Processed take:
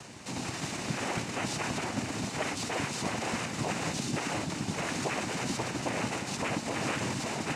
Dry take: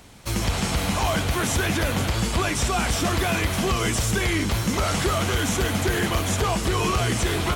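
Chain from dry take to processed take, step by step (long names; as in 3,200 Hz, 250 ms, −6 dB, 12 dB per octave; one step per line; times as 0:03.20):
upward compression, threshold −25 dBFS
cochlear-implant simulation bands 4
notch filter 3,300 Hz, Q 15
level −8.5 dB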